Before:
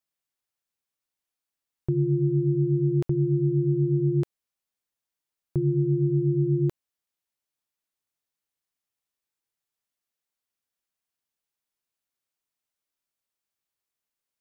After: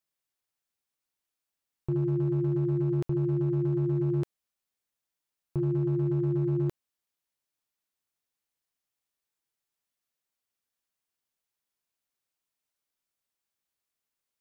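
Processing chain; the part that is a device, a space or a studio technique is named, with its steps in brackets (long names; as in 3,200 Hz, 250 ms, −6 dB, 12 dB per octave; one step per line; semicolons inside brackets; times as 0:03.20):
limiter into clipper (brickwall limiter −20.5 dBFS, peak gain reduction 5.5 dB; hard clipping −22 dBFS, distortion −25 dB)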